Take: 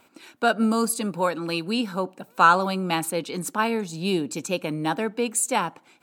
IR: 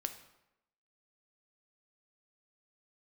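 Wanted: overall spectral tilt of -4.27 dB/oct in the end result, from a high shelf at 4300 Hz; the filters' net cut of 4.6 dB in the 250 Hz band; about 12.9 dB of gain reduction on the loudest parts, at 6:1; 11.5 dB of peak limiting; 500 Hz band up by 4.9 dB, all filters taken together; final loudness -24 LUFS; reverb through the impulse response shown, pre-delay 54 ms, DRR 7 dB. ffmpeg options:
-filter_complex "[0:a]equalizer=f=250:t=o:g=-8.5,equalizer=f=500:t=o:g=8,highshelf=f=4.3k:g=-7,acompressor=threshold=-24dB:ratio=6,alimiter=limit=-23.5dB:level=0:latency=1,asplit=2[a][b];[1:a]atrim=start_sample=2205,adelay=54[c];[b][c]afir=irnorm=-1:irlink=0,volume=-6.5dB[d];[a][d]amix=inputs=2:normalize=0,volume=8.5dB"

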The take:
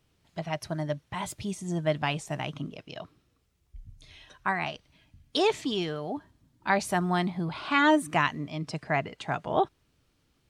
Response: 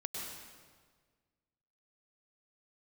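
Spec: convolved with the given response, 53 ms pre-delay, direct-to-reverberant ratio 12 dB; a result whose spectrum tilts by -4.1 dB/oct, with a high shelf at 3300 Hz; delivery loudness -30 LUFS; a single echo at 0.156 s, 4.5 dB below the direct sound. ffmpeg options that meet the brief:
-filter_complex "[0:a]highshelf=f=3.3k:g=-3.5,aecho=1:1:156:0.596,asplit=2[a][b];[1:a]atrim=start_sample=2205,adelay=53[c];[b][c]afir=irnorm=-1:irlink=0,volume=-12.5dB[d];[a][d]amix=inputs=2:normalize=0,volume=-1.5dB"

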